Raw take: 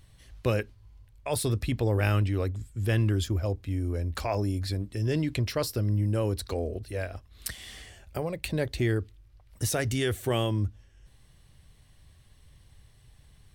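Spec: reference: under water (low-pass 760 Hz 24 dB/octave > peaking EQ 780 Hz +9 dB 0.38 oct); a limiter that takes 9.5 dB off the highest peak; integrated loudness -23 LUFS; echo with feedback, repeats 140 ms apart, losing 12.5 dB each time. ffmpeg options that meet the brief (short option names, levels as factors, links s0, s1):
-af "alimiter=limit=0.119:level=0:latency=1,lowpass=f=760:w=0.5412,lowpass=f=760:w=1.3066,equalizer=f=780:t=o:w=0.38:g=9,aecho=1:1:140|280|420:0.237|0.0569|0.0137,volume=2.37"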